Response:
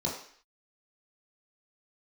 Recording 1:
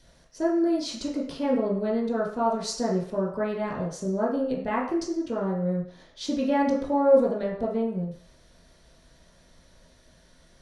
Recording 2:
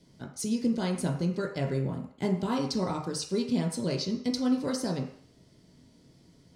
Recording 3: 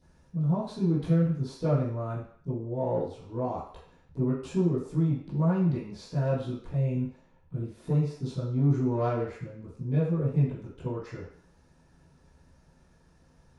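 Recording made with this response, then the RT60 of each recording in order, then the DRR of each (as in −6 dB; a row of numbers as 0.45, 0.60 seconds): 1; 0.55, 0.55, 0.55 seconds; −5.0, 0.0, −13.0 decibels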